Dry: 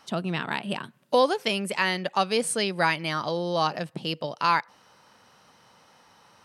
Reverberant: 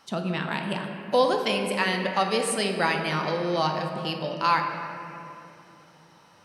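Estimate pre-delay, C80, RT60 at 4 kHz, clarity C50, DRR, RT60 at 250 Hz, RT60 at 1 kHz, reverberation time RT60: 5 ms, 5.0 dB, 1.7 s, 4.5 dB, 2.5 dB, 3.9 s, 2.5 s, 2.9 s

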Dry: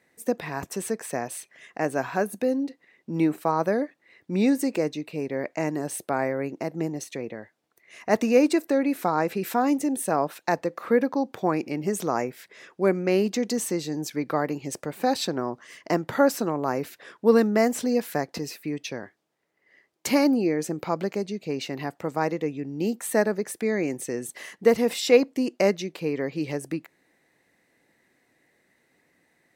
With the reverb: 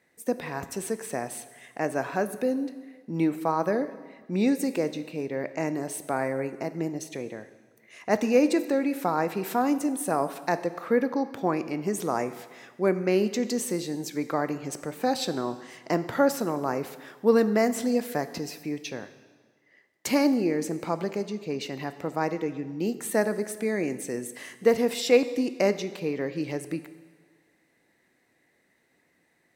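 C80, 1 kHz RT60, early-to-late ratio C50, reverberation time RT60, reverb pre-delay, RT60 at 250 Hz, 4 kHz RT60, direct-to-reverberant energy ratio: 15.0 dB, 1.5 s, 13.5 dB, 1.5 s, 7 ms, 1.5 s, 1.4 s, 11.5 dB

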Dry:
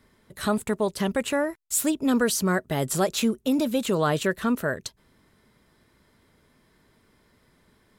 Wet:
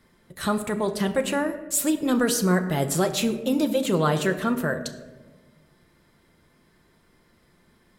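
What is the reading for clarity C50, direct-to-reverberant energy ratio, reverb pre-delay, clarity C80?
11.5 dB, 5.5 dB, 6 ms, 13.5 dB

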